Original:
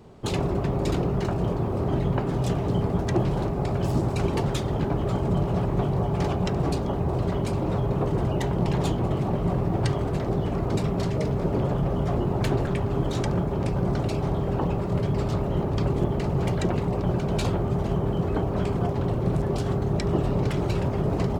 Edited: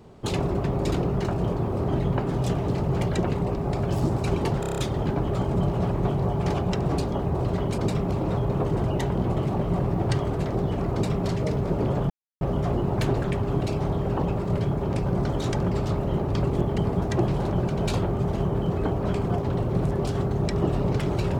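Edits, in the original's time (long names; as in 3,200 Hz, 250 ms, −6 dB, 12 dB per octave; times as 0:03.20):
0:02.75–0:03.49: swap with 0:16.21–0:17.03
0:04.52: stutter 0.03 s, 7 plays
0:08.63–0:08.96: remove
0:10.67–0:11.00: duplicate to 0:07.52
0:11.84: splice in silence 0.31 s
0:13.04–0:13.41: swap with 0:14.03–0:15.13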